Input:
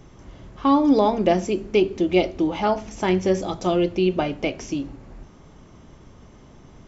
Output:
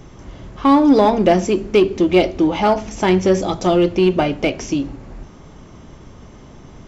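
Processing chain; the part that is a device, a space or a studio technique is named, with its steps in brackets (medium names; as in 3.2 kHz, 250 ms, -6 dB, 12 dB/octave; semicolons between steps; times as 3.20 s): parallel distortion (in parallel at -5 dB: hard clipper -19.5 dBFS, distortion -8 dB); on the sum: trim +3 dB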